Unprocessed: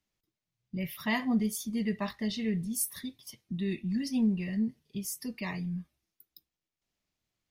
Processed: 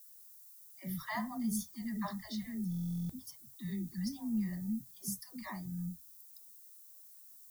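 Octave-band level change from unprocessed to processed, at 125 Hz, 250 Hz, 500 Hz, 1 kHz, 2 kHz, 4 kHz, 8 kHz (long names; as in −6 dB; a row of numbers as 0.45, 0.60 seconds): −3.5, −6.5, −14.0, −3.0, −9.0, −9.0, −7.0 decibels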